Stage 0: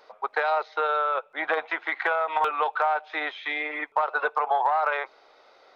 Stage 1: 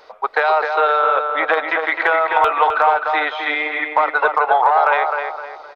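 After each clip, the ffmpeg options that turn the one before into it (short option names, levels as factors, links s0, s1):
-filter_complex "[0:a]lowshelf=f=110:t=q:w=1.5:g=7.5,asplit=2[s0][s1];[s1]adelay=258,lowpass=f=2600:p=1,volume=0.596,asplit=2[s2][s3];[s3]adelay=258,lowpass=f=2600:p=1,volume=0.39,asplit=2[s4][s5];[s5]adelay=258,lowpass=f=2600:p=1,volume=0.39,asplit=2[s6][s7];[s7]adelay=258,lowpass=f=2600:p=1,volume=0.39,asplit=2[s8][s9];[s9]adelay=258,lowpass=f=2600:p=1,volume=0.39[s10];[s0][s2][s4][s6][s8][s10]amix=inputs=6:normalize=0,volume=2.66"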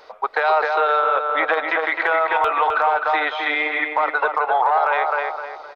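-af "alimiter=limit=0.355:level=0:latency=1:release=120"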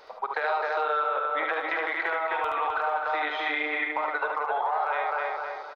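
-filter_complex "[0:a]acompressor=threshold=0.0708:ratio=3,asplit=2[s0][s1];[s1]aecho=0:1:47|73:0.224|0.631[s2];[s0][s2]amix=inputs=2:normalize=0,volume=0.596"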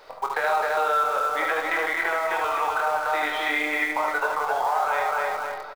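-filter_complex "[0:a]asplit=2[s0][s1];[s1]acrusher=bits=6:dc=4:mix=0:aa=0.000001,volume=0.355[s2];[s0][s2]amix=inputs=2:normalize=0,asplit=2[s3][s4];[s4]adelay=23,volume=0.473[s5];[s3][s5]amix=inputs=2:normalize=0"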